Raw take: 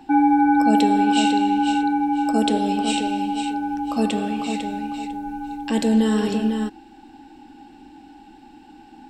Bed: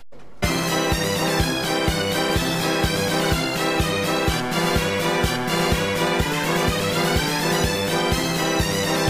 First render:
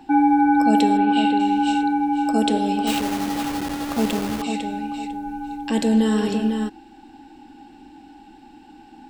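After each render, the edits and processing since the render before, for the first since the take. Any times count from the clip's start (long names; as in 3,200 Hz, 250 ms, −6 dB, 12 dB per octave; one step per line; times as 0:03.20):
0:00.97–0:01.40: moving average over 7 samples
0:02.87–0:04.42: hold until the input has moved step −23 dBFS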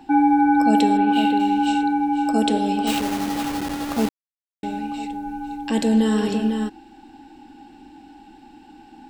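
0:01.06–0:01.66: running median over 5 samples
0:04.09–0:04.63: silence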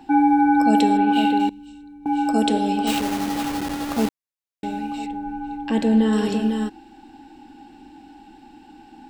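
0:01.49–0:02.06: guitar amp tone stack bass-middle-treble 10-0-1
0:05.06–0:06.13: bass and treble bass +1 dB, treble −11 dB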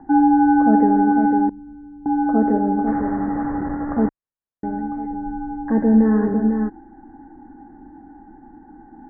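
Butterworth low-pass 1,900 Hz 96 dB per octave
spectral tilt −1.5 dB per octave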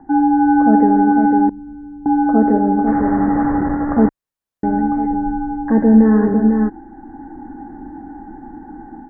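automatic gain control gain up to 9.5 dB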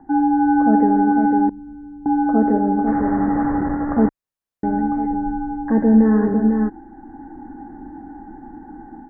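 level −3 dB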